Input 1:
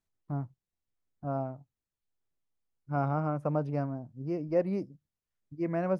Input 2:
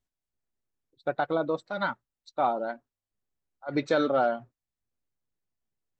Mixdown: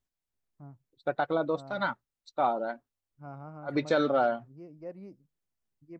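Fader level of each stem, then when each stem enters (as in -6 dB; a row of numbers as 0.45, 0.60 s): -14.5, -1.0 dB; 0.30, 0.00 s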